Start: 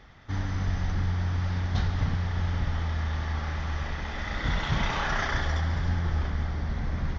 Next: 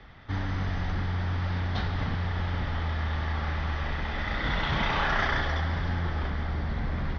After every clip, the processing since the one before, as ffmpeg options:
ffmpeg -i in.wav -filter_complex "[0:a]lowpass=frequency=4600:width=0.5412,lowpass=frequency=4600:width=1.3066,acrossover=split=220|590[link_01][link_02][link_03];[link_01]alimiter=level_in=3.5dB:limit=-24dB:level=0:latency=1,volume=-3.5dB[link_04];[link_04][link_02][link_03]amix=inputs=3:normalize=0,volume=2.5dB" out.wav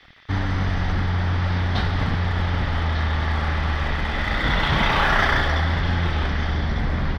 ffmpeg -i in.wav -filter_complex "[0:a]acrossover=split=1800[link_01][link_02];[link_01]aeval=exprs='sgn(val(0))*max(abs(val(0))-0.00422,0)':channel_layout=same[link_03];[link_02]aecho=1:1:1199:0.355[link_04];[link_03][link_04]amix=inputs=2:normalize=0,volume=8dB" out.wav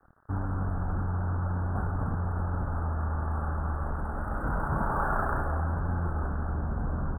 ffmpeg -i in.wav -af "asuperstop=centerf=3700:order=20:qfactor=0.55,volume=-7.5dB" out.wav

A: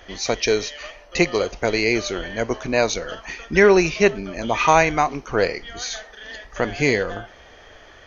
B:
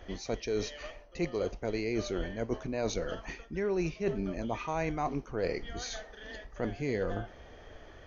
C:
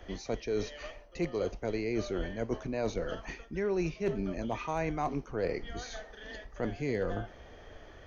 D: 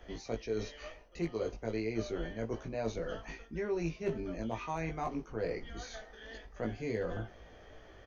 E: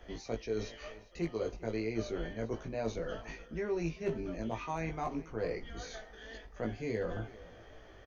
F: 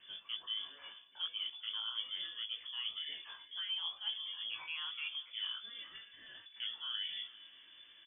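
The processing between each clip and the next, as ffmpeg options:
ffmpeg -i in.wav -af "tiltshelf=frequency=670:gain=6,areverse,acompressor=threshold=-23dB:ratio=10,areverse,volume=-5.5dB" out.wav
ffmpeg -i in.wav -filter_complex "[0:a]acrossover=split=160|2300[link_01][link_02][link_03];[link_03]alimiter=level_in=14dB:limit=-24dB:level=0:latency=1:release=192,volume=-14dB[link_04];[link_01][link_02][link_04]amix=inputs=3:normalize=0,asoftclip=type=hard:threshold=-21.5dB" out.wav
ffmpeg -i in.wav -filter_complex "[0:a]asplit=2[link_01][link_02];[link_02]adelay=18,volume=-3dB[link_03];[link_01][link_03]amix=inputs=2:normalize=0,volume=-5dB" out.wav
ffmpeg -i in.wav -af "aecho=1:1:399:0.106" out.wav
ffmpeg -i in.wav -af "lowpass=frequency=3000:width_type=q:width=0.5098,lowpass=frequency=3000:width_type=q:width=0.6013,lowpass=frequency=3000:width_type=q:width=0.9,lowpass=frequency=3000:width_type=q:width=2.563,afreqshift=-3500,volume=-5.5dB" out.wav

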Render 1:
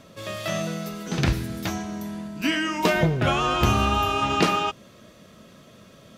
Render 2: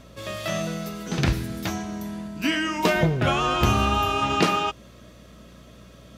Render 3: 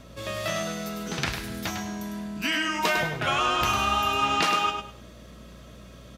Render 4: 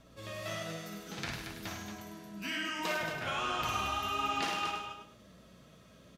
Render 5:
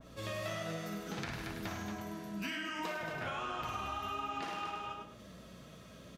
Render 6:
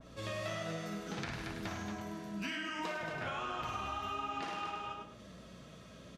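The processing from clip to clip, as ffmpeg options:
ffmpeg -i in.wav -af "aeval=exprs='val(0)+0.00316*(sin(2*PI*60*n/s)+sin(2*PI*2*60*n/s)/2+sin(2*PI*3*60*n/s)/3+sin(2*PI*4*60*n/s)/4+sin(2*PI*5*60*n/s)/5)':channel_layout=same" out.wav
ffmpeg -i in.wav -filter_complex "[0:a]aecho=1:1:102|204|306:0.447|0.107|0.0257,acrossover=split=730[link_01][link_02];[link_01]acompressor=threshold=-32dB:ratio=6[link_03];[link_03][link_02]amix=inputs=2:normalize=0" out.wav
ffmpeg -i in.wav -filter_complex "[0:a]flanger=delay=5.8:depth=6.1:regen=53:speed=1.4:shape=triangular,asplit=2[link_01][link_02];[link_02]aecho=0:1:55.39|227.4:0.631|0.447[link_03];[link_01][link_03]amix=inputs=2:normalize=0,volume=-7.5dB" out.wav
ffmpeg -i in.wav -af "acompressor=threshold=-39dB:ratio=10,adynamicequalizer=threshold=0.00126:dfrequency=2200:dqfactor=0.7:tfrequency=2200:tqfactor=0.7:attack=5:release=100:ratio=0.375:range=3.5:mode=cutabove:tftype=highshelf,volume=4.5dB" out.wav
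ffmpeg -i in.wav -af "lowpass=9500" out.wav

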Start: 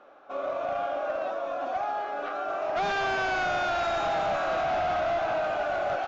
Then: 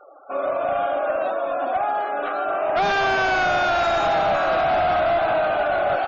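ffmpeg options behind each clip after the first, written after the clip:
ffmpeg -i in.wav -af "afftfilt=real='re*gte(hypot(re,im),0.00447)':imag='im*gte(hypot(re,im),0.00447)':win_size=1024:overlap=0.75,volume=7.5dB" out.wav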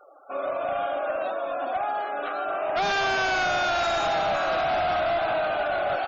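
ffmpeg -i in.wav -af "highshelf=frequency=3500:gain=10.5,volume=-5.5dB" out.wav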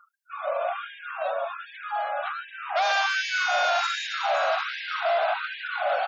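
ffmpeg -i in.wav -af "afftfilt=real='re*gte(b*sr/1024,450*pow(1600/450,0.5+0.5*sin(2*PI*1.3*pts/sr)))':imag='im*gte(b*sr/1024,450*pow(1600/450,0.5+0.5*sin(2*PI*1.3*pts/sr)))':win_size=1024:overlap=0.75,volume=1.5dB" out.wav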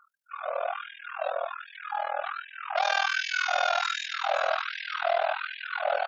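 ffmpeg -i in.wav -af "tremolo=f=41:d=0.947,volume=1.5dB" out.wav

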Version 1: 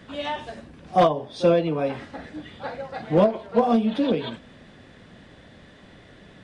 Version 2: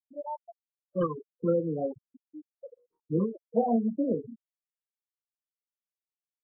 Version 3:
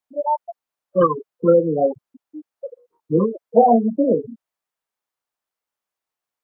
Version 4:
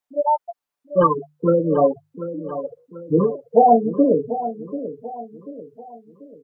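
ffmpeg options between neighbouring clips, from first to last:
ffmpeg -i in.wav -af "afftfilt=real='re*gte(hypot(re,im),0.158)':imag='im*gte(hypot(re,im),0.158)':win_size=1024:overlap=0.75,afftfilt=real='re*(1-between(b*sr/1024,640*pow(1600/640,0.5+0.5*sin(2*PI*0.58*pts/sr))/1.41,640*pow(1600/640,0.5+0.5*sin(2*PI*0.58*pts/sr))*1.41))':imag='im*(1-between(b*sr/1024,640*pow(1600/640,0.5+0.5*sin(2*PI*0.58*pts/sr))/1.41,640*pow(1600/640,0.5+0.5*sin(2*PI*0.58*pts/sr))*1.41))':win_size=1024:overlap=0.75,volume=-5.5dB" out.wav
ffmpeg -i in.wav -af "equalizer=frequency=900:width_type=o:width=2.3:gain=10.5,volume=6dB" out.wav
ffmpeg -i in.wav -af "bandreject=frequency=50:width_type=h:width=6,bandreject=frequency=100:width_type=h:width=6,bandreject=frequency=150:width_type=h:width=6,aecho=1:1:6.9:0.43,aecho=1:1:739|1478|2217|2956:0.237|0.0996|0.0418|0.0176" out.wav

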